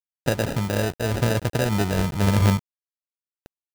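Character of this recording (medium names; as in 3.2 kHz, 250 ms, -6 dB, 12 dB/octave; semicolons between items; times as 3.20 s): a quantiser's noise floor 6-bit, dither none; random-step tremolo 3.5 Hz; aliases and images of a low sample rate 1.1 kHz, jitter 0%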